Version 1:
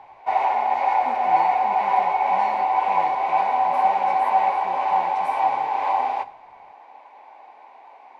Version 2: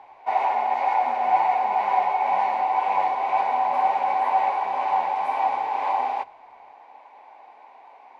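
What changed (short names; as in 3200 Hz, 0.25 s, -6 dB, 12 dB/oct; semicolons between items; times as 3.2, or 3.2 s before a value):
speech -8.0 dB; background: send -9.5 dB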